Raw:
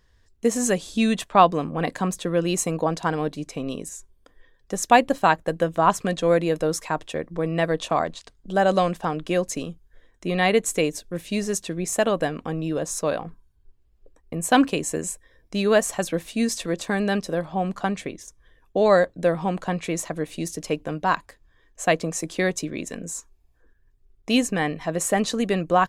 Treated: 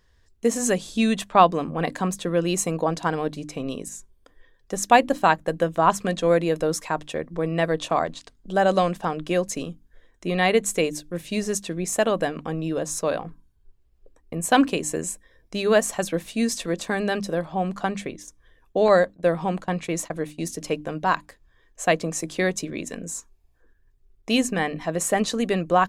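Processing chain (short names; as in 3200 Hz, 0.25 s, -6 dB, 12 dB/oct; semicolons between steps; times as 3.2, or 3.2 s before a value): 18.88–20.44 gate -32 dBFS, range -19 dB; notches 50/100/150/200/250/300 Hz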